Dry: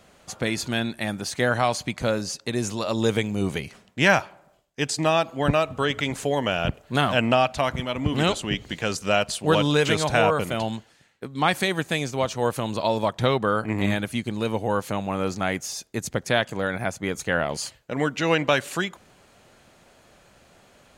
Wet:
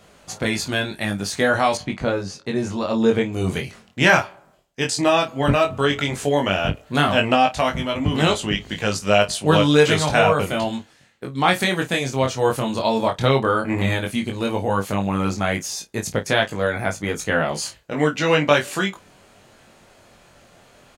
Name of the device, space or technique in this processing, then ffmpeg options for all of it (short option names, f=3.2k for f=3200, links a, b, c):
double-tracked vocal: -filter_complex "[0:a]asplit=2[a][b];[b]adelay=31,volume=-12dB[c];[a][c]amix=inputs=2:normalize=0,flanger=delay=19:depth=3.6:speed=0.12,asettb=1/sr,asplit=3[d][e][f];[d]atrim=end=1.774[g];[e]atrim=start=1.77:end=3.33,asetpts=PTS-STARTPTS,afade=t=in:d=0.004:c=qsin,afade=t=out:st=1.556:d=0.004:c=qsin,aemphasis=mode=reproduction:type=75kf[h];[f]atrim=start=3.326[i];[g][h]acrossfade=d=0.004:c1=hsin:c2=qsin[j];[j][i]acrossfade=d=0.004:c1=qsin:c2=hsin,volume=6.5dB"